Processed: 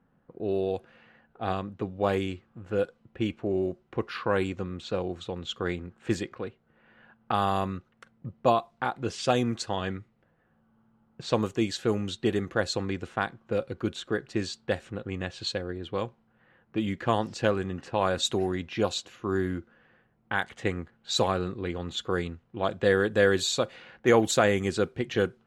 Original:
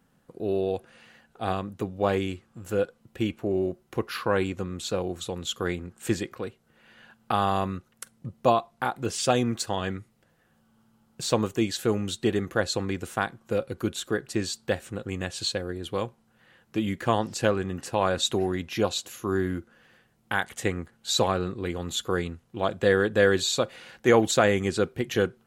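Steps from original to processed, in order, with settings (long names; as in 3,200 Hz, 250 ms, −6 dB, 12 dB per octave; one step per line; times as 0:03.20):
low-pass that shuts in the quiet parts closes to 1,700 Hz, open at −19.5 dBFS
level −1.5 dB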